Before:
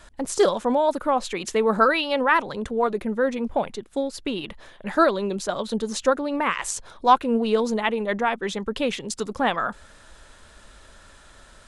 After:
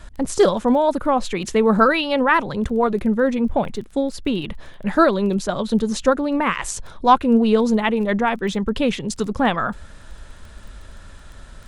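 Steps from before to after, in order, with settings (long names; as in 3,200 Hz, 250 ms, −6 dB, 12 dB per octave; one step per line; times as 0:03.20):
bass and treble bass +10 dB, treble −2 dB
surface crackle 11 per second −35 dBFS
level +2.5 dB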